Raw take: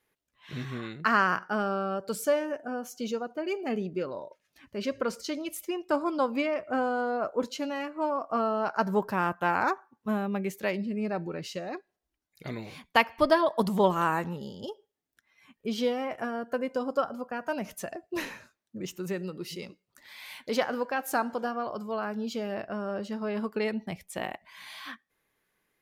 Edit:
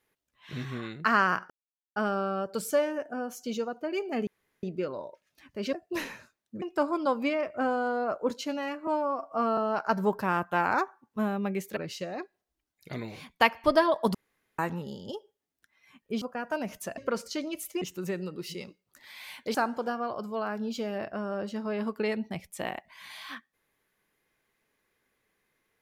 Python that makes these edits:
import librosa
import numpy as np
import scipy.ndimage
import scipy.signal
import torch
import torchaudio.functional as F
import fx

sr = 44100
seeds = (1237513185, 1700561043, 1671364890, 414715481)

y = fx.edit(x, sr, fx.insert_silence(at_s=1.5, length_s=0.46),
    fx.insert_room_tone(at_s=3.81, length_s=0.36),
    fx.swap(start_s=4.91, length_s=0.84, other_s=17.94, other_length_s=0.89),
    fx.stretch_span(start_s=8.0, length_s=0.47, factor=1.5),
    fx.cut(start_s=10.66, length_s=0.65),
    fx.room_tone_fill(start_s=13.69, length_s=0.44),
    fx.cut(start_s=15.76, length_s=1.42),
    fx.cut(start_s=20.56, length_s=0.55), tone=tone)